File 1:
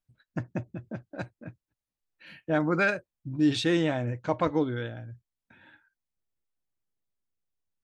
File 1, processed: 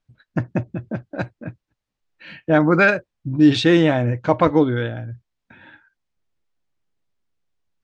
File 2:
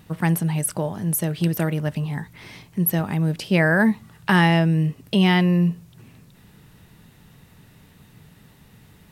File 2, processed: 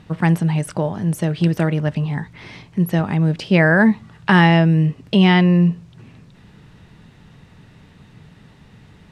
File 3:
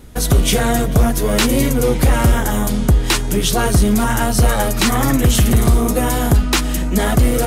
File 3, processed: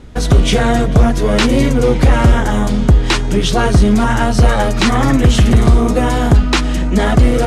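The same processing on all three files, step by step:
high-frequency loss of the air 92 metres
normalise the peak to −2 dBFS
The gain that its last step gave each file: +10.5, +4.5, +3.5 decibels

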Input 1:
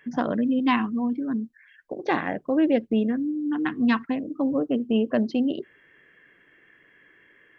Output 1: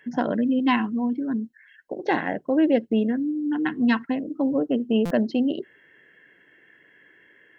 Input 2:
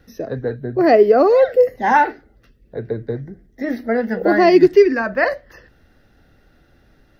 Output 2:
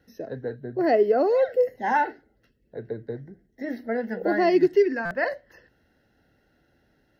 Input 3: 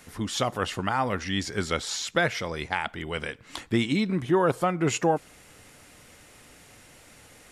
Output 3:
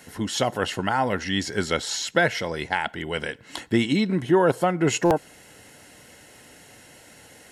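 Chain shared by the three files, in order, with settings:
notch comb filter 1,200 Hz
buffer that repeats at 0:05.05, samples 256, times 9
loudness normalisation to −24 LKFS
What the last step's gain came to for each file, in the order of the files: +1.5, −8.0, +4.0 decibels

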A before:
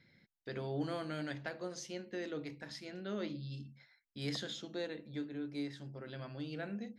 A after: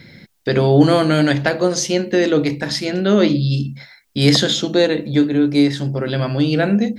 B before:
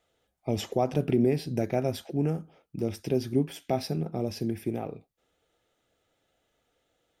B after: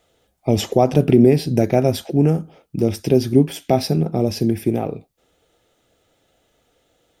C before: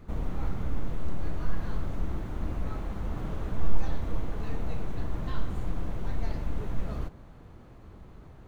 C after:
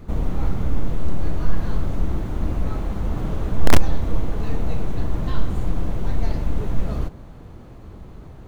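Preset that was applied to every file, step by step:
parametric band 1,600 Hz −3.5 dB 1.9 octaves
in parallel at −6 dB: wrap-around overflow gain 10.5 dB
on the sum: normalise the peak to −1.5 dBFS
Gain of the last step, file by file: +23.0, +8.5, +5.5 decibels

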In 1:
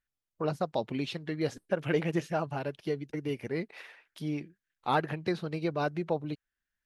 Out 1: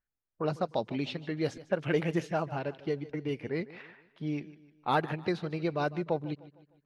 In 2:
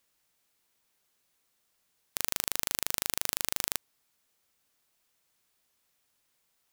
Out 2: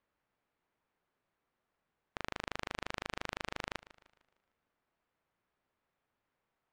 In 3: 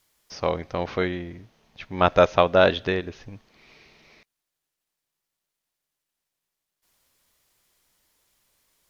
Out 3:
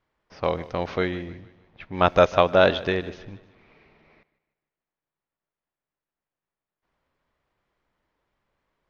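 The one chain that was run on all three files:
low-pass that shuts in the quiet parts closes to 1,600 Hz, open at −24 dBFS
feedback echo with a swinging delay time 152 ms, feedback 43%, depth 51 cents, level −18 dB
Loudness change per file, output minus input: 0.0, −11.5, 0.0 LU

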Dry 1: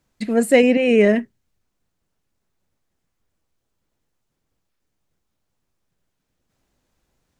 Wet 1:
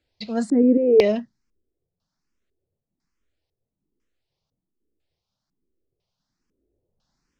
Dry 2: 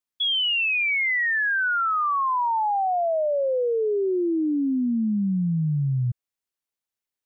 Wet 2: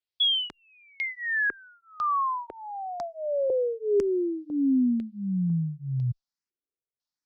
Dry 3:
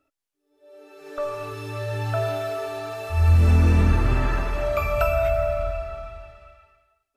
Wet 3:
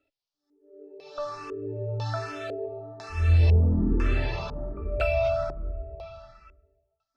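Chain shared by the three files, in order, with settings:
auto-filter low-pass square 1 Hz 400–5,000 Hz
frequency shifter mixed with the dry sound +1.2 Hz
level −2 dB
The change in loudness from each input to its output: −2.5, −4.5, −4.0 LU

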